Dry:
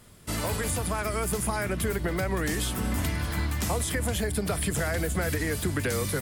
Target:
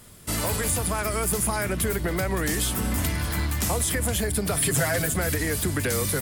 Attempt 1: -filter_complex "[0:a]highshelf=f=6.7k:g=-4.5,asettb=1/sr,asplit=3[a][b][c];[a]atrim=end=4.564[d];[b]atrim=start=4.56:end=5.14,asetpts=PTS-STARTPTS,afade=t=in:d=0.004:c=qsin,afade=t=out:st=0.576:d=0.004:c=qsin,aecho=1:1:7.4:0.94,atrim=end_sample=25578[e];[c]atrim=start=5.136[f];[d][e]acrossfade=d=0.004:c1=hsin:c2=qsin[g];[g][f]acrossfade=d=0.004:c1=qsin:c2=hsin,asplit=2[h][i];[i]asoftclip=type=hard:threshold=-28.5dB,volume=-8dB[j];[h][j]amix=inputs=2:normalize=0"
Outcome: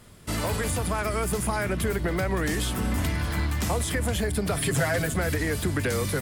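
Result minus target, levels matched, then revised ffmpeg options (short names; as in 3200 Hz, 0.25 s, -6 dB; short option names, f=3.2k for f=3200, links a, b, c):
8000 Hz band -5.0 dB
-filter_complex "[0:a]highshelf=f=6.7k:g=7,asettb=1/sr,asplit=3[a][b][c];[a]atrim=end=4.564[d];[b]atrim=start=4.56:end=5.14,asetpts=PTS-STARTPTS,afade=t=in:d=0.004:c=qsin,afade=t=out:st=0.576:d=0.004:c=qsin,aecho=1:1:7.4:0.94,atrim=end_sample=25578[e];[c]atrim=start=5.136[f];[d][e]acrossfade=d=0.004:c1=hsin:c2=qsin[g];[g][f]acrossfade=d=0.004:c1=qsin:c2=hsin,asplit=2[h][i];[i]asoftclip=type=hard:threshold=-28.5dB,volume=-8dB[j];[h][j]amix=inputs=2:normalize=0"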